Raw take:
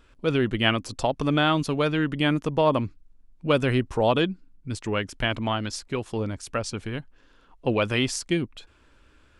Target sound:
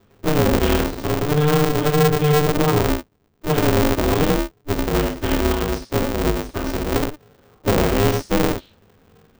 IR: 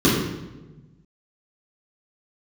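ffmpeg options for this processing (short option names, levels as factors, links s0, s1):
-filter_complex "[0:a]asettb=1/sr,asplit=3[s0][s1][s2];[s0]atrim=end=1.724[s3];[s1]atrim=start=1.72:end=2.34,asetpts=PTS-STARTPTS,afade=t=in:d=0.004:c=qsin,afade=t=out:st=0.616:d=0.004:c=qsin,highpass=f=150:p=1[s4];[s2]atrim=start=2.336[s5];[s3][s4]acrossfade=d=0.004:c1=hsin:c2=qsin[s6];[s6][s5]acrossfade=d=0.004:c1=qsin:c2=hsin,asettb=1/sr,asplit=3[s7][s8][s9];[s7]atrim=end=6.794[s10];[s8]atrim=start=6.79:end=7.94,asetpts=PTS-STARTPTS,afade=t=in:d=0.004:c=qsin,afade=t=out:st=1.146:d=0.004:c=qsin,equalizer=f=400:w=0.68:g=4.5[s11];[s9]atrim=start=7.936[s12];[s10][s11]acrossfade=d=0.004:c1=hsin:c2=qsin[s13];[s13][s12]acrossfade=d=0.004:c1=qsin:c2=hsin[s14];[1:a]atrim=start_sample=2205,atrim=end_sample=6174,asetrate=41013,aresample=44100[s15];[s14][s15]afir=irnorm=-1:irlink=0,alimiter=level_in=0.2:limit=0.891:release=50:level=0:latency=1,aeval=exprs='val(0)*sgn(sin(2*PI*150*n/s))':c=same,volume=0.376"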